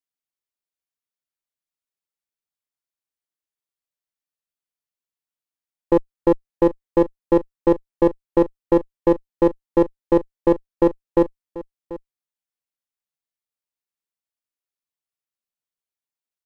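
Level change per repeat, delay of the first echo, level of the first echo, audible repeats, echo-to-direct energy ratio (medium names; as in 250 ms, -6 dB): no regular repeats, 738 ms, -16.5 dB, 1, -16.5 dB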